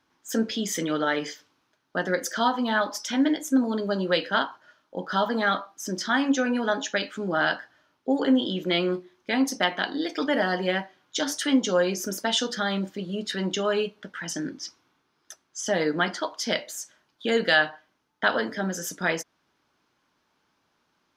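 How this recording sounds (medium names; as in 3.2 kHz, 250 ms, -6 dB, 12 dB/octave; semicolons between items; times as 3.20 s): noise floor -72 dBFS; spectral tilt -3.5 dB/octave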